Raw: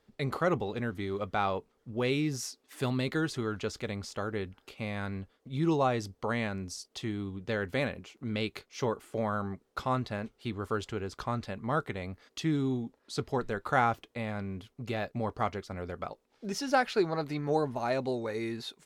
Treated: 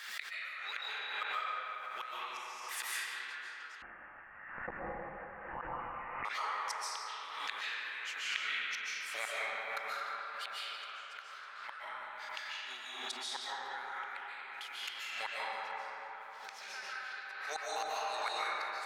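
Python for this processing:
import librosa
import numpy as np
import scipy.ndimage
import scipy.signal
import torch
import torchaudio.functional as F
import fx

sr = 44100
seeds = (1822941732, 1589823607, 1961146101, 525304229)

y = scipy.signal.sosfilt(scipy.signal.cheby1(3, 1.0, 1600.0, 'highpass', fs=sr, output='sos'), x)
y = fx.high_shelf(y, sr, hz=2400.0, db=-6.5)
y = fx.rider(y, sr, range_db=4, speed_s=2.0)
y = fx.gate_flip(y, sr, shuts_db=-40.0, range_db=-28)
y = y + 10.0 ** (-15.0 / 20.0) * np.pad(y, (int(166 * sr / 1000.0), 0))[:len(y)]
y = fx.rev_freeverb(y, sr, rt60_s=4.6, hf_ratio=0.4, predelay_ms=105, drr_db=-9.0)
y = fx.freq_invert(y, sr, carrier_hz=3200, at=(3.82, 6.25))
y = fx.pre_swell(y, sr, db_per_s=42.0)
y = y * 10.0 ** (13.5 / 20.0)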